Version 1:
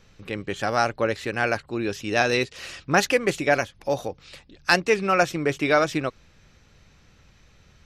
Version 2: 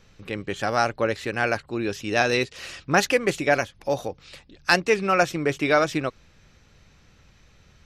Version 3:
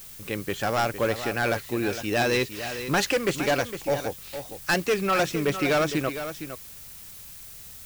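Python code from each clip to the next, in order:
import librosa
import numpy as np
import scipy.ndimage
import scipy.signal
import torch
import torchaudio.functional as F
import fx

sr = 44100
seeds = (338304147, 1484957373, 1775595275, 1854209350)

y1 = x
y2 = np.clip(10.0 ** (18.5 / 20.0) * y1, -1.0, 1.0) / 10.0 ** (18.5 / 20.0)
y2 = y2 + 10.0 ** (-10.5 / 20.0) * np.pad(y2, (int(459 * sr / 1000.0), 0))[:len(y2)]
y2 = fx.dmg_noise_colour(y2, sr, seeds[0], colour='blue', level_db=-44.0)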